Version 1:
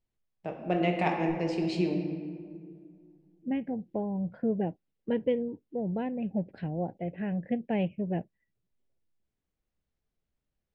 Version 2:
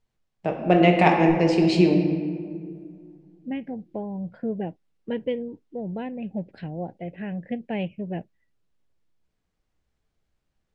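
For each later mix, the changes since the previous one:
first voice +10.5 dB; second voice: add treble shelf 2.5 kHz +9 dB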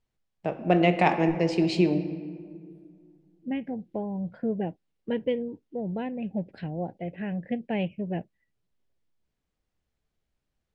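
first voice: send -9.5 dB

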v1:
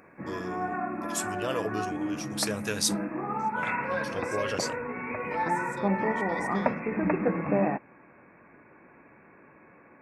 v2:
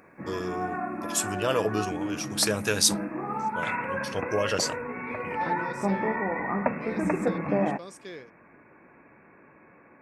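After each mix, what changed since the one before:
first voice +5.5 dB; second voice: entry +1.50 s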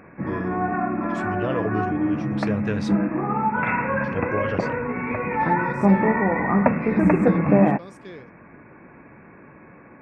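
first voice: add tape spacing loss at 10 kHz 26 dB; background +6.5 dB; master: add tone controls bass +7 dB, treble -9 dB

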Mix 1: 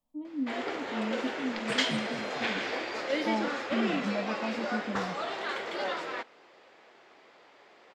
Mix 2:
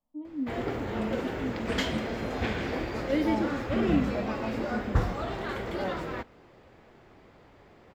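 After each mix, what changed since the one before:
background: remove band-pass 450–6000 Hz; master: add treble shelf 2.4 kHz -8.5 dB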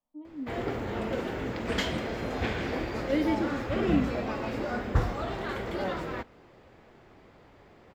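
first voice: add bass shelf 370 Hz -8 dB

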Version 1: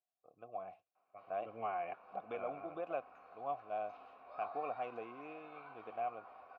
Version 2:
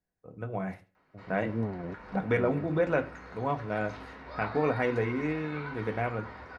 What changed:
first voice: send on; second voice: add Butterworth band-pass 220 Hz, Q 0.64; master: remove vowel filter a

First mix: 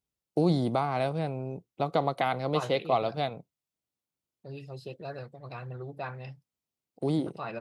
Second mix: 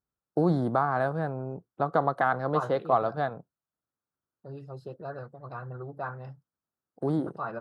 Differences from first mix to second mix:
first voice: add peaking EQ 1.7 kHz +14 dB 0.2 oct; master: add resonant high shelf 1.8 kHz -9 dB, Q 3

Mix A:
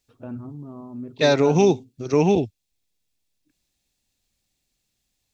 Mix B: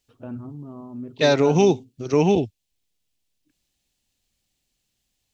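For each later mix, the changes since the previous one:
master: remove band-stop 3 kHz, Q 13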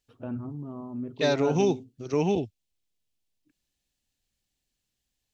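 second voice -7.0 dB

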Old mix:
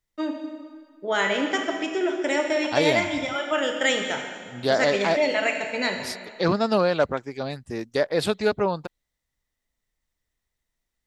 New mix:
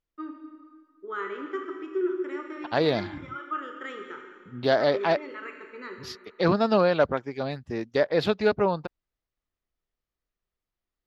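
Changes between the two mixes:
first voice: add two resonant band-passes 680 Hz, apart 1.7 oct; second voice: add boxcar filter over 5 samples

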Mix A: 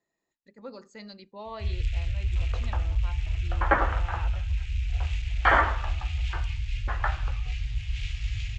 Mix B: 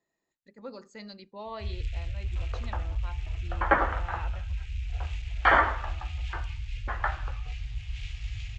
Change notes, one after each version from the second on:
first sound -5.0 dB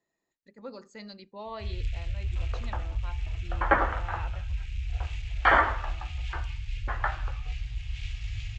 reverb: on, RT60 0.80 s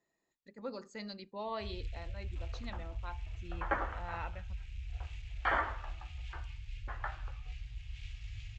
first sound -10.0 dB; second sound -11.0 dB

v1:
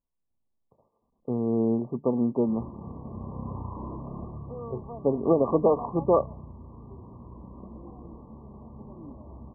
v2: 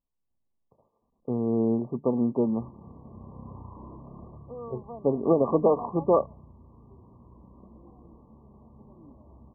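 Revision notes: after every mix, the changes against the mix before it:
background -7.5 dB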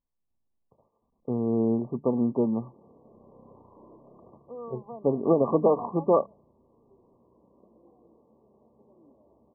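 background: add band-pass filter 500 Hz, Q 1.7

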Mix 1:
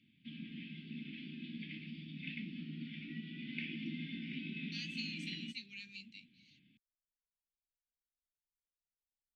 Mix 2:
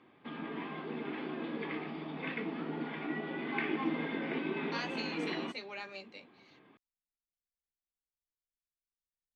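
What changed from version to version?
master: remove elliptic band-stop 220–2600 Hz, stop band 60 dB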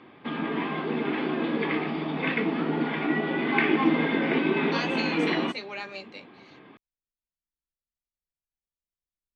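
speech +7.0 dB; background +11.5 dB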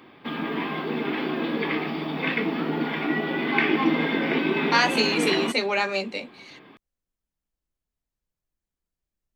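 speech: remove pre-emphasis filter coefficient 0.8; master: remove distance through air 180 m

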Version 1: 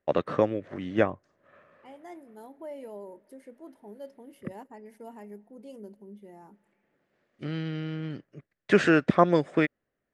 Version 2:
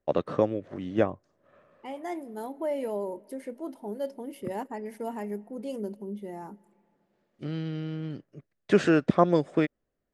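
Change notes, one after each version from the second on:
first voice: add peaking EQ 1.9 kHz -7 dB 1.3 oct; second voice +10.0 dB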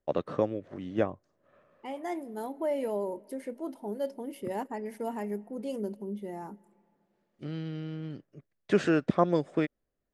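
first voice -3.5 dB

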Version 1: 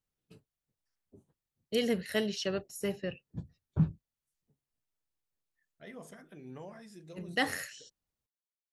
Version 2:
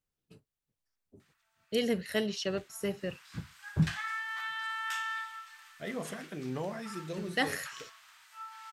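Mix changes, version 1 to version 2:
second voice +10.0 dB; background: unmuted

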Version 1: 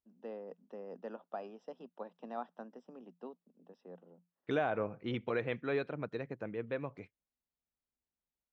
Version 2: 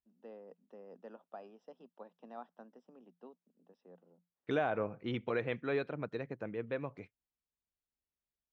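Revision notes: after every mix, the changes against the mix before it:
first voice -6.5 dB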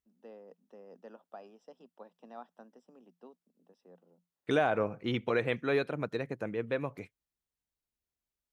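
second voice +4.5 dB; master: remove distance through air 140 m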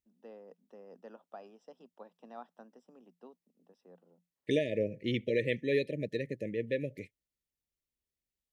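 second voice: add brick-wall FIR band-stop 630–1700 Hz

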